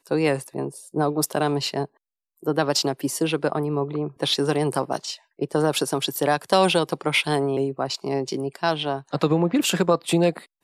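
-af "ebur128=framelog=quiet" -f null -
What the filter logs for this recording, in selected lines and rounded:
Integrated loudness:
  I:         -23.5 LUFS
  Threshold: -33.6 LUFS
Loudness range:
  LRA:         2.2 LU
  Threshold: -43.8 LUFS
  LRA low:   -25.0 LUFS
  LRA high:  -22.8 LUFS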